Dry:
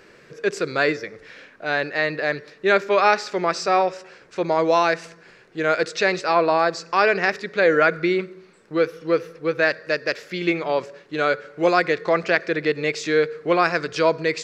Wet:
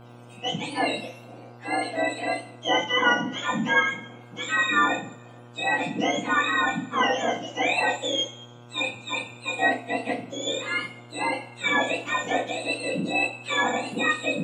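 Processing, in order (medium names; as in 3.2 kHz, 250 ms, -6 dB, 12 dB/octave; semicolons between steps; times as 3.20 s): spectrum inverted on a logarithmic axis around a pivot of 1.1 kHz; two-slope reverb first 0.33 s, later 1.6 s, from -26 dB, DRR -3.5 dB; mains buzz 120 Hz, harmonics 13, -40 dBFS -5 dB/octave; trim -7.5 dB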